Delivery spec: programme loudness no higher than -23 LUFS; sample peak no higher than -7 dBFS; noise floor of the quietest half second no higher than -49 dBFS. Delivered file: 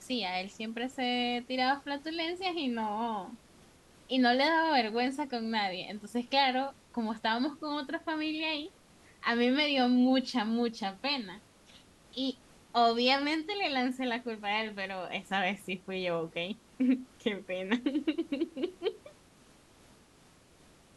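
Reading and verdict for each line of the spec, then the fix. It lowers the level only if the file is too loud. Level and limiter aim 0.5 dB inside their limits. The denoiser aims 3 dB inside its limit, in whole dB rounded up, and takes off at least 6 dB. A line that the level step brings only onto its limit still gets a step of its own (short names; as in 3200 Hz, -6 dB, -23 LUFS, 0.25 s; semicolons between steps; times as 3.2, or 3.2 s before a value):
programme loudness -31.5 LUFS: OK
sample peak -14.5 dBFS: OK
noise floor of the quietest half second -61 dBFS: OK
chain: none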